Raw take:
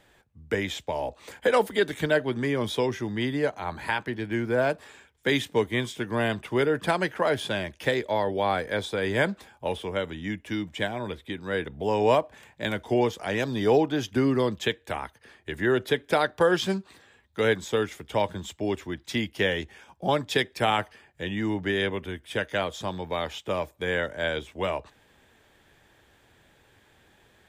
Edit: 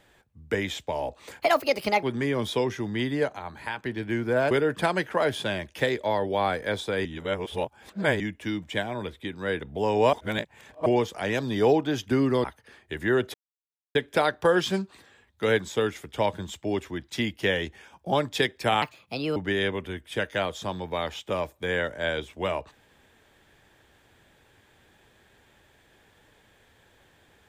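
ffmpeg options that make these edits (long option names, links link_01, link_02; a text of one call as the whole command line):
ffmpeg -i in.wav -filter_complex "[0:a]asplit=14[link_01][link_02][link_03][link_04][link_05][link_06][link_07][link_08][link_09][link_10][link_11][link_12][link_13][link_14];[link_01]atrim=end=1.424[link_15];[link_02]atrim=start=1.42:end=2.25,asetpts=PTS-STARTPTS,asetrate=59976,aresample=44100[link_16];[link_03]atrim=start=2.246:end=3.612[link_17];[link_04]atrim=start=3.608:end=4.052,asetpts=PTS-STARTPTS,volume=-5.5dB[link_18];[link_05]atrim=start=4.048:end=4.732[link_19];[link_06]atrim=start=6.558:end=9.102[link_20];[link_07]atrim=start=9.098:end=10.252,asetpts=PTS-STARTPTS,areverse[link_21];[link_08]atrim=start=10.248:end=12.182[link_22];[link_09]atrim=start=12.178:end=12.912,asetpts=PTS-STARTPTS,areverse[link_23];[link_10]atrim=start=12.908:end=14.492[link_24];[link_11]atrim=start=15.008:end=15.91,asetpts=PTS-STARTPTS,afade=type=out:start_time=0.898:duration=0.004:curve=hsin,apad=pad_dur=0.61[link_25];[link_12]atrim=start=15.91:end=20.784,asetpts=PTS-STARTPTS,afade=type=in:duration=0.004:curve=hsin[link_26];[link_13]atrim=start=20.78:end=21.55,asetpts=PTS-STARTPTS,asetrate=62622,aresample=44100,atrim=end_sample=23913,asetpts=PTS-STARTPTS[link_27];[link_14]atrim=start=21.546[link_28];[link_15][link_16]acrossfade=duration=0.004:curve1=hsin:curve2=hsin[link_29];[link_29][link_17]acrossfade=duration=0.004:curve1=hsin:curve2=hsin[link_30];[link_30][link_18]acrossfade=duration=0.004:curve1=hsin:curve2=hsin[link_31];[link_31][link_19]acrossfade=duration=0.004:curve1=hsin:curve2=hsin[link_32];[link_32][link_20]acrossfade=duration=0.004:curve1=hsin:curve2=hsin[link_33];[link_33][link_21]acrossfade=duration=0.004:curve1=hsin:curve2=hsin[link_34];[link_34][link_22]acrossfade=duration=0.004:curve1=hsin:curve2=hsin[link_35];[link_35][link_23]acrossfade=duration=0.004:curve1=hsin:curve2=hsin[link_36];[link_36][link_24]acrossfade=duration=0.004:curve1=hsin:curve2=hsin[link_37];[link_25][link_26]concat=n=2:v=0:a=1[link_38];[link_37][link_38]acrossfade=duration=0.004:curve1=hsin:curve2=hsin[link_39];[link_39][link_27]acrossfade=duration=0.004:curve1=hsin:curve2=hsin[link_40];[link_40][link_28]acrossfade=duration=0.004:curve1=hsin:curve2=hsin" out.wav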